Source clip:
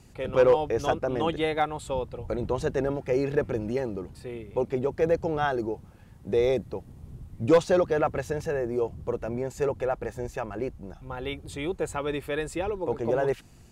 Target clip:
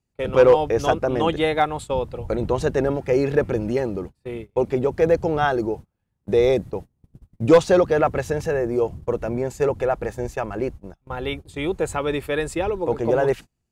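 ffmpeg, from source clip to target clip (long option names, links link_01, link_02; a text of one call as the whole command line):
ffmpeg -i in.wav -af "agate=range=-31dB:threshold=-38dB:ratio=16:detection=peak,volume=6dB" out.wav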